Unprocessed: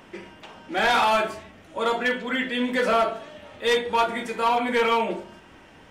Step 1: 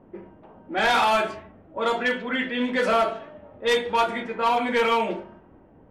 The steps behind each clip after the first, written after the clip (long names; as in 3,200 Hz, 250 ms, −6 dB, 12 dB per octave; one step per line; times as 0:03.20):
low-pass that shuts in the quiet parts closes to 540 Hz, open at −18 dBFS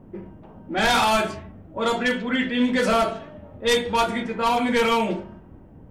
bass and treble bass +11 dB, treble +9 dB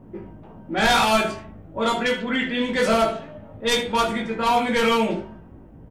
ambience of single reflections 18 ms −5 dB, 76 ms −14.5 dB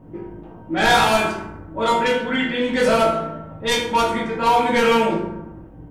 convolution reverb RT60 1.0 s, pre-delay 3 ms, DRR 1.5 dB